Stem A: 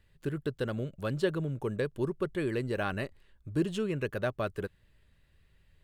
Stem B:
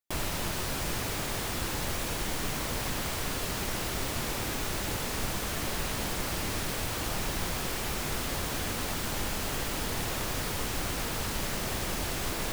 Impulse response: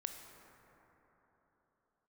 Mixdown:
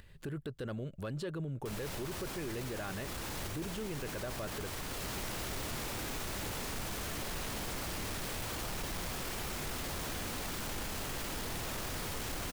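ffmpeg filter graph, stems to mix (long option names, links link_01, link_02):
-filter_complex "[0:a]acompressor=threshold=-37dB:ratio=2,volume=2dB,asplit=2[link_01][link_02];[1:a]adelay=1550,volume=-2dB,asplit=2[link_03][link_04];[link_04]volume=-4.5dB[link_05];[link_02]apad=whole_len=620538[link_06];[link_03][link_06]sidechaincompress=threshold=-51dB:ratio=8:attack=16:release=351[link_07];[2:a]atrim=start_sample=2205[link_08];[link_05][link_08]afir=irnorm=-1:irlink=0[link_09];[link_01][link_07][link_09]amix=inputs=3:normalize=0,acompressor=mode=upward:threshold=-48dB:ratio=2.5,asoftclip=type=tanh:threshold=-24.5dB,alimiter=level_in=8dB:limit=-24dB:level=0:latency=1:release=16,volume=-8dB"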